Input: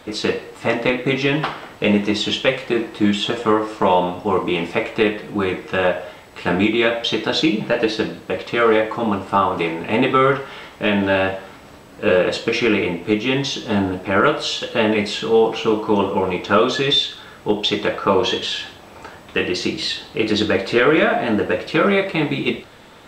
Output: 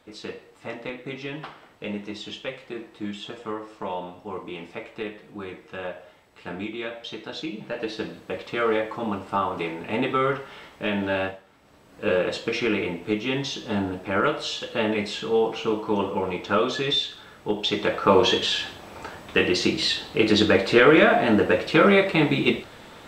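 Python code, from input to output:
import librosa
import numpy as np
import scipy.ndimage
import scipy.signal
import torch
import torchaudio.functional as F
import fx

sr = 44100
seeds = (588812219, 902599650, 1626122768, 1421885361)

y = fx.gain(x, sr, db=fx.line((7.47, -15.5), (8.19, -8.0), (11.25, -8.0), (11.44, -19.5), (12.03, -7.0), (17.54, -7.0), (18.17, -0.5)))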